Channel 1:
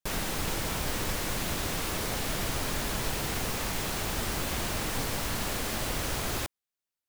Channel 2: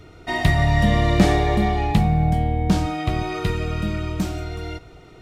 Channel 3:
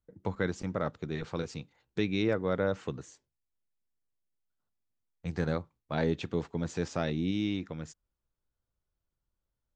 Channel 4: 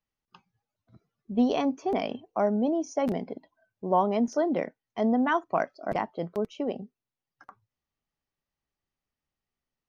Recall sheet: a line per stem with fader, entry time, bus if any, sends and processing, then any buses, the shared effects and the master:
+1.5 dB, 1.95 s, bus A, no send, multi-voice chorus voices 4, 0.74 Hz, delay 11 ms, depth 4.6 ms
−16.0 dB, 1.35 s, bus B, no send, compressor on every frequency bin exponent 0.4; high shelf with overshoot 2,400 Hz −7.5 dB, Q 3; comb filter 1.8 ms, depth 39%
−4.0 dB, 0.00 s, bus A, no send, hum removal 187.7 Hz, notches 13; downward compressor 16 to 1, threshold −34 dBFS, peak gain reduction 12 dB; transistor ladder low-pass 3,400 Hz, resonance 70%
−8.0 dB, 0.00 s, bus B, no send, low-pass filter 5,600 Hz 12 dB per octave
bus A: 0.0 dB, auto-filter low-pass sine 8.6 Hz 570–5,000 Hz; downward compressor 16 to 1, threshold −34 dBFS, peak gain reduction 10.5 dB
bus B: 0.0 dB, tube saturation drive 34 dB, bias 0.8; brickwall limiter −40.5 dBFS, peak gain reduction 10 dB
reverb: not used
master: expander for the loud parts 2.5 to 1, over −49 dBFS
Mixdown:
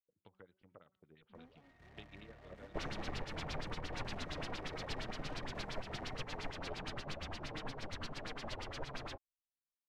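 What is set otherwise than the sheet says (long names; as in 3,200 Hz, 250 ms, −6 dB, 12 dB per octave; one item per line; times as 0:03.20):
stem 1: entry 1.95 s → 2.70 s
stem 3 −4.0 dB → +2.5 dB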